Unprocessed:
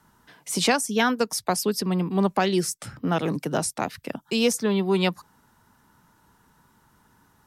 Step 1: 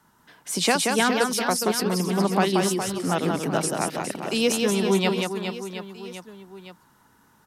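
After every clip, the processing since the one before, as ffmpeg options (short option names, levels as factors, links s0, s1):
-filter_complex "[0:a]lowshelf=f=99:g=-9,asplit=2[s0][s1];[s1]aecho=0:1:180|414|718.2|1114|1628:0.631|0.398|0.251|0.158|0.1[s2];[s0][s2]amix=inputs=2:normalize=0"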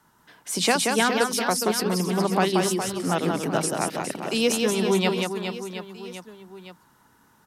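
-af "bandreject=f=50:t=h:w=6,bandreject=f=100:t=h:w=6,bandreject=f=150:t=h:w=6,bandreject=f=200:t=h:w=6,bandreject=f=250:t=h:w=6"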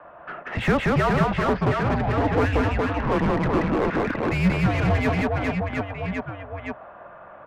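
-filter_complex "[0:a]equalizer=f=250:t=o:w=1:g=7,equalizer=f=500:t=o:w=1:g=11,equalizer=f=1000:t=o:w=1:g=5,equalizer=f=2000:t=o:w=1:g=10,highpass=f=200:t=q:w=0.5412,highpass=f=200:t=q:w=1.307,lowpass=f=3200:t=q:w=0.5176,lowpass=f=3200:t=q:w=0.7071,lowpass=f=3200:t=q:w=1.932,afreqshift=-300,asplit=2[s0][s1];[s1]highpass=f=720:p=1,volume=20,asoftclip=type=tanh:threshold=0.376[s2];[s0][s2]amix=inputs=2:normalize=0,lowpass=f=1000:p=1,volume=0.501,volume=0.501"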